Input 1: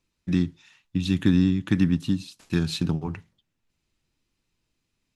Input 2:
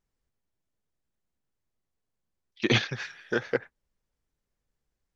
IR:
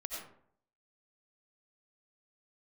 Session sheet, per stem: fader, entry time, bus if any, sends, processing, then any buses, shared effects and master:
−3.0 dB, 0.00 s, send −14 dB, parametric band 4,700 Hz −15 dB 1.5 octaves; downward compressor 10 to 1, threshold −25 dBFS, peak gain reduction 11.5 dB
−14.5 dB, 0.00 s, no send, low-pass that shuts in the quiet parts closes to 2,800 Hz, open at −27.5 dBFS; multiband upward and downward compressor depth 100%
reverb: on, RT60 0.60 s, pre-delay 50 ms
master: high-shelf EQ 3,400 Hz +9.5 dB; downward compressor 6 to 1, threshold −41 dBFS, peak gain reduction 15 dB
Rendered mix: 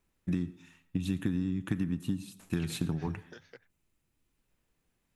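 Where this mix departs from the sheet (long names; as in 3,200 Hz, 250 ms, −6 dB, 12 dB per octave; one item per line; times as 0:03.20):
stem 2 −14.5 dB → −25.5 dB
master: missing downward compressor 6 to 1, threshold −41 dBFS, peak gain reduction 15 dB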